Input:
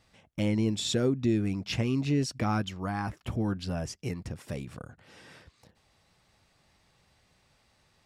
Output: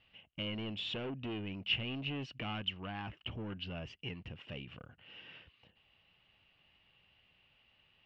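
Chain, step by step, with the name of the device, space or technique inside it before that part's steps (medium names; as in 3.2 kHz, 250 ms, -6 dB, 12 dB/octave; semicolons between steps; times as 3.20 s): overdriven synthesiser ladder filter (saturation -28.5 dBFS, distortion -9 dB; four-pole ladder low-pass 3 kHz, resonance 85%); trim +4.5 dB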